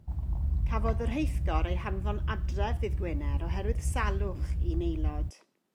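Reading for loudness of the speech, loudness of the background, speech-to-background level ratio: −37.0 LKFS, −33.0 LKFS, −4.0 dB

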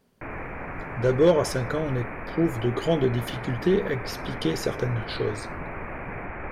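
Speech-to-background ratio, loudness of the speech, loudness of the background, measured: 9.5 dB, −26.0 LKFS, −35.5 LKFS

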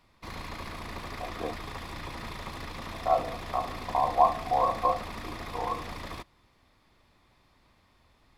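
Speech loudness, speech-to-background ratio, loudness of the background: −29.5 LKFS, 10.5 dB, −40.0 LKFS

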